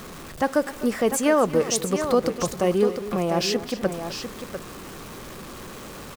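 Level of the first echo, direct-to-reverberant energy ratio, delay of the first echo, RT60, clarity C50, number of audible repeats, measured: -15.5 dB, none, 0.252 s, none, none, 2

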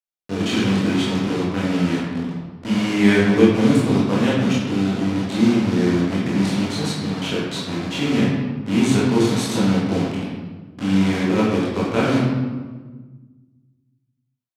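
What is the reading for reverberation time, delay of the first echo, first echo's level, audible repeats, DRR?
1.4 s, none, none, none, -7.5 dB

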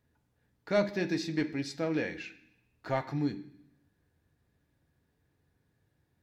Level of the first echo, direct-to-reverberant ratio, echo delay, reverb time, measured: none, 6.5 dB, none, 0.70 s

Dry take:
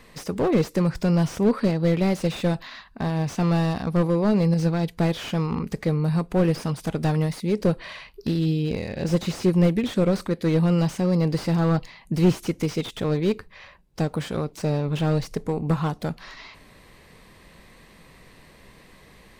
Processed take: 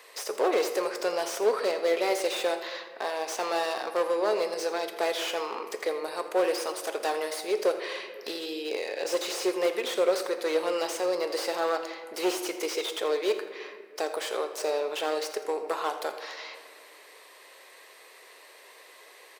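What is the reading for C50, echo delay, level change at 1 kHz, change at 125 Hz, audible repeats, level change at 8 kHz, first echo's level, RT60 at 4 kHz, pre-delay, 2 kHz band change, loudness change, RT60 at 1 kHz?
8.5 dB, 83 ms, +1.0 dB, under -40 dB, 1, +4.0 dB, -15.0 dB, 1.1 s, 4 ms, +1.5 dB, -5.5 dB, 1.8 s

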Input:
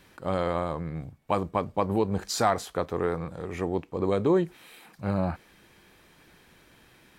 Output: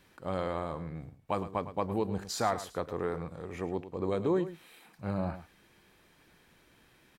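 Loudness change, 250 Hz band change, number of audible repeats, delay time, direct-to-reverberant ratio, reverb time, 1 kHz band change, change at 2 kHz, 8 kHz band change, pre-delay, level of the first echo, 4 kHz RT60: -6.0 dB, -5.5 dB, 1, 0.107 s, none, none, -6.0 dB, -6.0 dB, -6.0 dB, none, -13.0 dB, none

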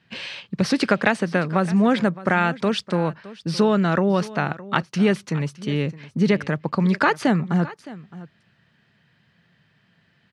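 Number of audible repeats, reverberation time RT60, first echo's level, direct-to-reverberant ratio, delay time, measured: 1, none, -18.0 dB, none, 0.615 s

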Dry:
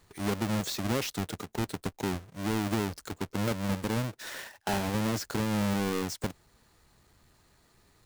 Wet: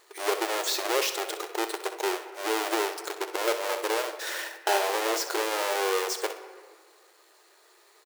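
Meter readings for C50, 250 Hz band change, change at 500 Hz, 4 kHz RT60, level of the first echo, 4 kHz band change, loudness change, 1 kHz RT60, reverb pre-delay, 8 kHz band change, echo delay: 8.5 dB, -7.0 dB, +7.0 dB, 1.0 s, -12.0 dB, +7.0 dB, +3.5 dB, 1.7 s, 5 ms, +7.0 dB, 63 ms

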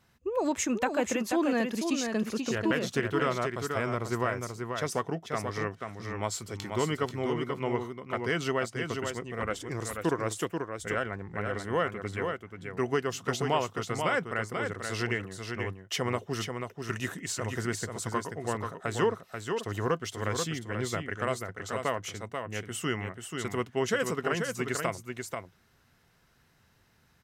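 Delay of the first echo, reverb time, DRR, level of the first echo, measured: 0.486 s, none, none, -5.5 dB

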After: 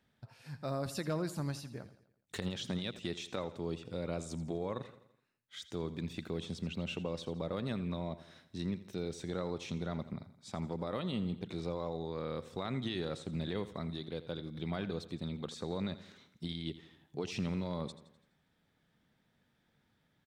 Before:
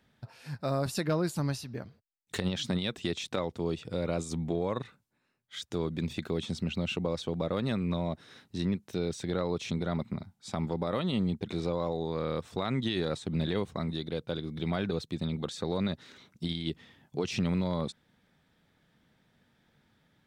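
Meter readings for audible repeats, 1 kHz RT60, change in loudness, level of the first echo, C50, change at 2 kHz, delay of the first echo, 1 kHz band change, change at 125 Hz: 4, none, -6.5 dB, -15.0 dB, none, -6.5 dB, 84 ms, -6.5 dB, -6.5 dB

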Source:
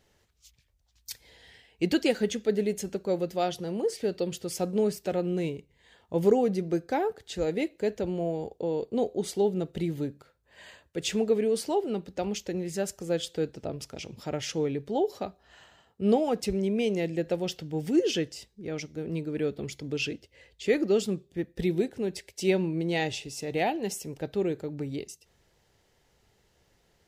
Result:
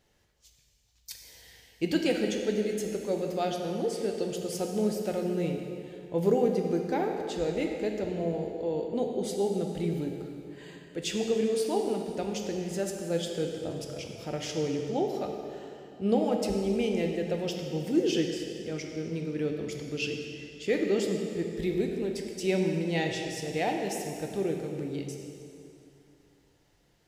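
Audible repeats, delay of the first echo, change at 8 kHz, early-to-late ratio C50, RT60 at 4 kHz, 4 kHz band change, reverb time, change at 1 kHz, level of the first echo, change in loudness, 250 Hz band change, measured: none, none, -1.0 dB, 3.5 dB, 2.4 s, -1.0 dB, 2.7 s, -1.0 dB, none, -1.0 dB, -0.5 dB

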